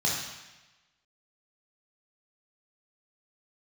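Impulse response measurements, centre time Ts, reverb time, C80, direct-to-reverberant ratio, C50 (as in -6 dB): 64 ms, 1.1 s, 4.0 dB, -4.5 dB, 1.5 dB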